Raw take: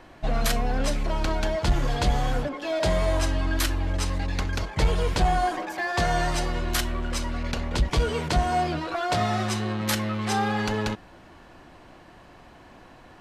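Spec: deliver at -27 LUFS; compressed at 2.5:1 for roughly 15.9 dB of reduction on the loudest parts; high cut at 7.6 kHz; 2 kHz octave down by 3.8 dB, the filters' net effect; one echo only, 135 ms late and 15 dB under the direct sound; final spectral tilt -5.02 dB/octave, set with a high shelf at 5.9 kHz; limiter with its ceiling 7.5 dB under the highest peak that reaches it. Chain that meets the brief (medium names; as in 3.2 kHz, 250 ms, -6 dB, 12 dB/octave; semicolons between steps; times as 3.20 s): low-pass 7.6 kHz; peaking EQ 2 kHz -4.5 dB; treble shelf 5.9 kHz -4 dB; compression 2.5:1, threshold -42 dBFS; peak limiter -32.5 dBFS; delay 135 ms -15 dB; trim +15.5 dB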